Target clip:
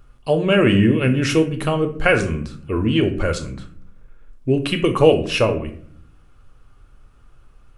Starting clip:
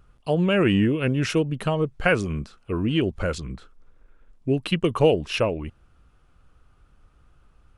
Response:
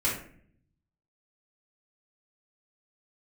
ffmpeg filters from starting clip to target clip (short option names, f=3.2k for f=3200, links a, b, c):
-filter_complex "[0:a]asplit=2[a][b];[1:a]atrim=start_sample=2205,highshelf=f=5.9k:g=9.5[c];[b][c]afir=irnorm=-1:irlink=0,volume=-13.5dB[d];[a][d]amix=inputs=2:normalize=0,volume=2.5dB"